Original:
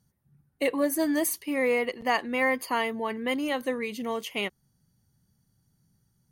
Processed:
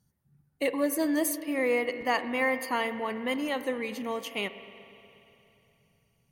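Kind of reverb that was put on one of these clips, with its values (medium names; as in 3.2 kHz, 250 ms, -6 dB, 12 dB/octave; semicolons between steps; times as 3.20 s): spring tank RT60 3.1 s, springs 41/59 ms, chirp 75 ms, DRR 11 dB; trim -2 dB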